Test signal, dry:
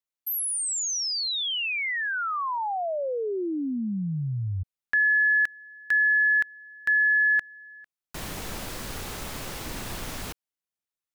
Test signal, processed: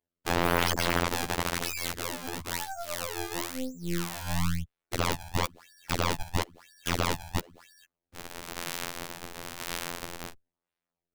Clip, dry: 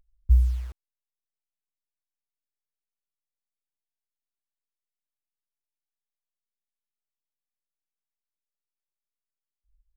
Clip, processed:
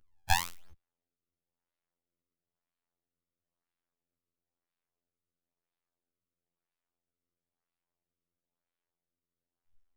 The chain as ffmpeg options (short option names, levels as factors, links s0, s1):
-filter_complex "[0:a]bass=f=250:g=8,treble=f=4000:g=8,asplit=2[s0][s1];[s1]acompressor=threshold=0.02:ratio=6:attack=2:release=39:knee=1:detection=rms,volume=1[s2];[s0][s2]amix=inputs=2:normalize=0,acrusher=samples=30:mix=1:aa=0.000001:lfo=1:lforange=48:lforate=1,afreqshift=-27,afftfilt=real='hypot(re,im)*cos(PI*b)':imag='0':win_size=2048:overlap=0.75,aeval=exprs='0.891*(cos(1*acos(clip(val(0)/0.891,-1,1)))-cos(1*PI/2))+0.355*(cos(3*acos(clip(val(0)/0.891,-1,1)))-cos(3*PI/2))+0.178*(cos(5*acos(clip(val(0)/0.891,-1,1)))-cos(5*PI/2))+0.282*(cos(6*acos(clip(val(0)/0.891,-1,1)))-cos(6*PI/2))+0.178*(cos(7*acos(clip(val(0)/0.891,-1,1)))-cos(7*PI/2))':c=same,volume=0.562"